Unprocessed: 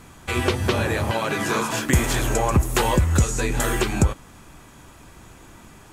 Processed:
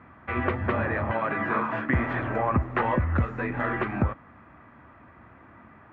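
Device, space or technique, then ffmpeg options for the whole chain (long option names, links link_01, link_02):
bass cabinet: -af "highpass=frequency=67:width=0.5412,highpass=frequency=67:width=1.3066,equalizer=frequency=160:width_type=q:width=4:gain=-4,equalizer=frequency=240:width_type=q:width=4:gain=4,equalizer=frequency=410:width_type=q:width=4:gain=-4,equalizer=frequency=640:width_type=q:width=4:gain=4,equalizer=frequency=1200:width_type=q:width=4:gain=6,equalizer=frequency=1900:width_type=q:width=4:gain=6,lowpass=frequency=2100:width=0.5412,lowpass=frequency=2100:width=1.3066,volume=-5dB"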